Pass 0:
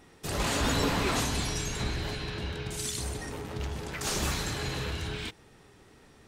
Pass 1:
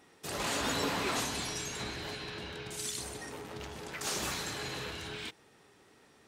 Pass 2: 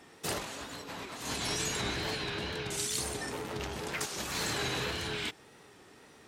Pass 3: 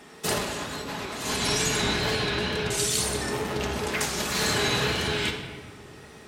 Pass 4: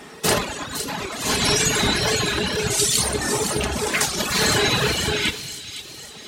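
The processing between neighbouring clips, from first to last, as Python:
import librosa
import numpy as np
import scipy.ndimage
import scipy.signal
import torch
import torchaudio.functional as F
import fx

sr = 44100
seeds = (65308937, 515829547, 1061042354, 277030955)

y1 = fx.highpass(x, sr, hz=280.0, slope=6)
y1 = F.gain(torch.from_numpy(y1), -3.0).numpy()
y2 = fx.over_compress(y1, sr, threshold_db=-38.0, ratio=-0.5)
y2 = fx.wow_flutter(y2, sr, seeds[0], rate_hz=2.1, depth_cents=68.0)
y2 = F.gain(torch.from_numpy(y2), 3.5).numpy()
y3 = fx.room_shoebox(y2, sr, seeds[1], volume_m3=1800.0, walls='mixed', distance_m=1.4)
y3 = F.gain(torch.from_numpy(y3), 6.5).numpy()
y4 = fx.dereverb_blind(y3, sr, rt60_s=1.7)
y4 = fx.echo_wet_highpass(y4, sr, ms=510, feedback_pct=51, hz=4100.0, wet_db=-6)
y4 = F.gain(torch.from_numpy(y4), 8.0).numpy()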